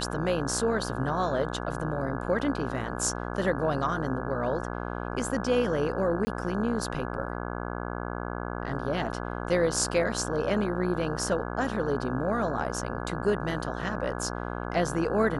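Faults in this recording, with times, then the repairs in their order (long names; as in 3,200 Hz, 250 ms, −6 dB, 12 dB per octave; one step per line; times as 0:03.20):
mains buzz 60 Hz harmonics 28 −34 dBFS
0:06.25–0:06.27: drop-out 20 ms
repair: hum removal 60 Hz, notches 28
repair the gap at 0:06.25, 20 ms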